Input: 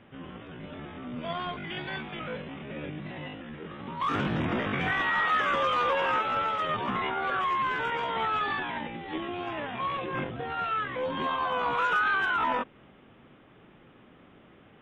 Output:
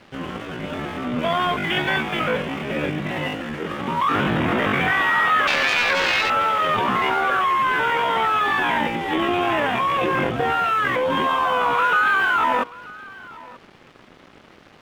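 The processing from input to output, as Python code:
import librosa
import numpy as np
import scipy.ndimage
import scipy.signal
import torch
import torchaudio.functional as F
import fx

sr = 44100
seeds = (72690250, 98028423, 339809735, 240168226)

p1 = fx.self_delay(x, sr, depth_ms=0.42, at=(5.47, 6.3))
p2 = scipy.signal.sosfilt(scipy.signal.butter(2, 3800.0, 'lowpass', fs=sr, output='sos'), p1)
p3 = fx.low_shelf(p2, sr, hz=270.0, db=-6.0)
p4 = fx.over_compress(p3, sr, threshold_db=-36.0, ratio=-1.0)
p5 = p3 + F.gain(torch.from_numpy(p4), 1.0).numpy()
p6 = np.sign(p5) * np.maximum(np.abs(p5) - 10.0 ** (-48.5 / 20.0), 0.0)
p7 = p6 + 10.0 ** (-21.0 / 20.0) * np.pad(p6, (int(933 * sr / 1000.0), 0))[:len(p6)]
y = F.gain(torch.from_numpy(p7), 7.0).numpy()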